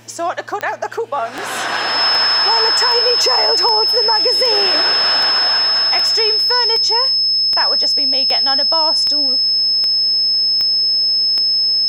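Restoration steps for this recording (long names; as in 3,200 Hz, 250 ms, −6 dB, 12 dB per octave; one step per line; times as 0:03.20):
click removal
hum removal 115.1 Hz, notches 8
notch filter 5,200 Hz, Q 30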